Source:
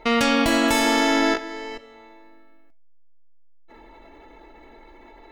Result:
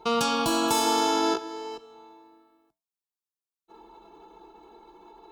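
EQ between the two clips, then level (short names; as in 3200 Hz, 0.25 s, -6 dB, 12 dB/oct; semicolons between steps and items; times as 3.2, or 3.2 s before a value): HPF 71 Hz 12 dB/oct; fixed phaser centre 390 Hz, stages 8; 0.0 dB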